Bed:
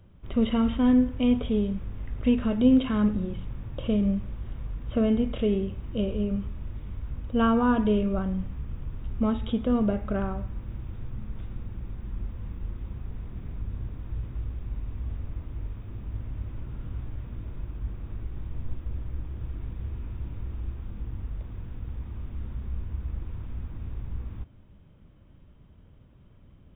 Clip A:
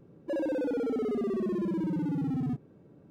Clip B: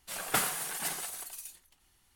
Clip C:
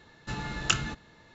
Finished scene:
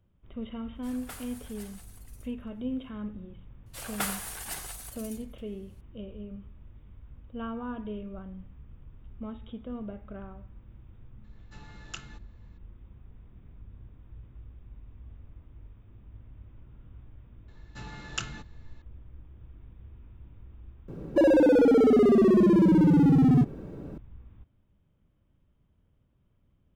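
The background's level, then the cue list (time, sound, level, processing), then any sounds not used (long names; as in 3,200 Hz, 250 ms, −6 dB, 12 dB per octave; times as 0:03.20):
bed −14 dB
0:00.75: mix in B −15.5 dB
0:03.66: mix in B −3 dB
0:11.24: mix in C −15.5 dB
0:17.48: mix in C −8 dB
0:20.88: mix in A −13 dB + boost into a limiter +27.5 dB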